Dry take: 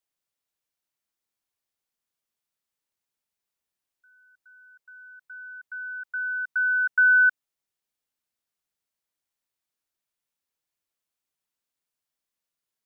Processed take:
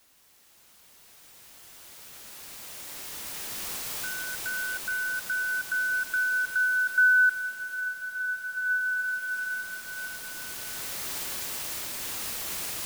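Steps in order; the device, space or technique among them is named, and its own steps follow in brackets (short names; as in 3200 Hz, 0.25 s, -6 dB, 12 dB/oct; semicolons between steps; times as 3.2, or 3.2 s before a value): cheap recorder with automatic gain (white noise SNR 27 dB; recorder AGC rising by 7.4 dB/s); bloom reverb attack 2.25 s, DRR 5.5 dB; gain -3.5 dB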